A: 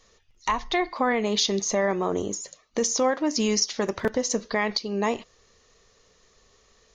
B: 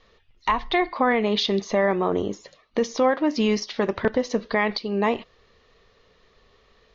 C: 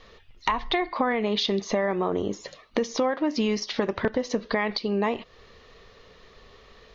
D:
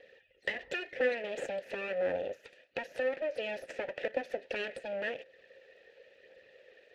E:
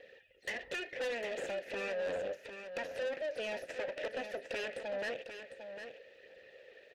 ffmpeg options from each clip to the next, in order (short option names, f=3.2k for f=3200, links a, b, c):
-af "lowpass=f=4k:w=0.5412,lowpass=f=4k:w=1.3066,volume=3dB"
-af "acompressor=threshold=-32dB:ratio=3,volume=7dB"
-filter_complex "[0:a]aphaser=in_gain=1:out_gain=1:delay=3.2:decay=0.43:speed=0.95:type=triangular,aeval=exprs='abs(val(0))':c=same,asplit=3[a][b][c];[a]bandpass=f=530:t=q:w=8,volume=0dB[d];[b]bandpass=f=1.84k:t=q:w=8,volume=-6dB[e];[c]bandpass=f=2.48k:t=q:w=8,volume=-9dB[f];[d][e][f]amix=inputs=3:normalize=0,volume=6dB"
-af "asoftclip=type=tanh:threshold=-35dB,aecho=1:1:752:0.355,volume=1.5dB"